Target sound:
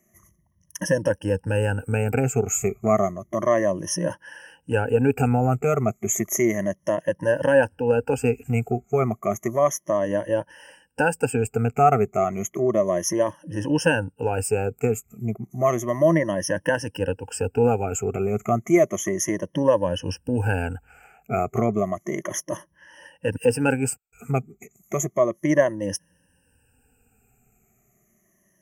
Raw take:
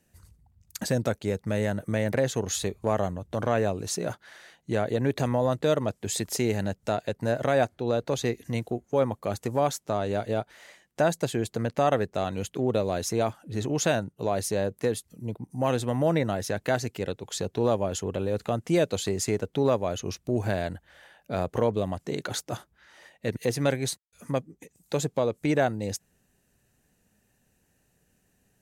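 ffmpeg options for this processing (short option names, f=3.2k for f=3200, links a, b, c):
-af "afftfilt=real='re*pow(10,22/40*sin(2*PI*(1.2*log(max(b,1)*sr/1024/100)/log(2)-(-0.32)*(pts-256)/sr)))':imag='im*pow(10,22/40*sin(2*PI*(1.2*log(max(b,1)*sr/1024/100)/log(2)-(-0.32)*(pts-256)/sr)))':win_size=1024:overlap=0.75,asuperstop=centerf=4000:order=8:qfactor=1.8"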